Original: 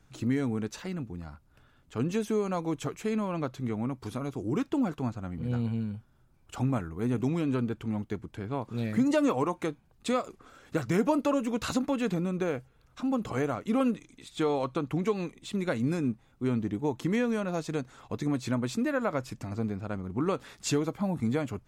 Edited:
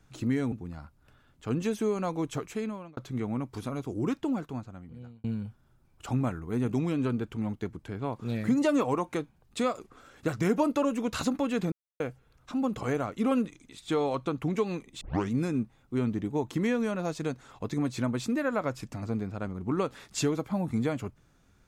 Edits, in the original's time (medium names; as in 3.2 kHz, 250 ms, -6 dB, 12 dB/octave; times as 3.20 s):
0.52–1.01 s: delete
2.96–3.46 s: fade out
4.55–5.73 s: fade out
12.21–12.49 s: mute
15.50 s: tape start 0.30 s